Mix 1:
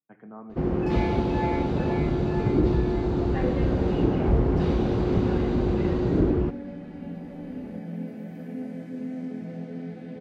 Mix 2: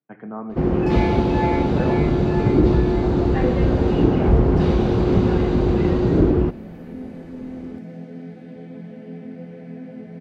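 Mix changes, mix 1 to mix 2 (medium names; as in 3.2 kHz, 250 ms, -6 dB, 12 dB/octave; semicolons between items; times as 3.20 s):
speech +10.5 dB; first sound +6.0 dB; second sound: entry -1.60 s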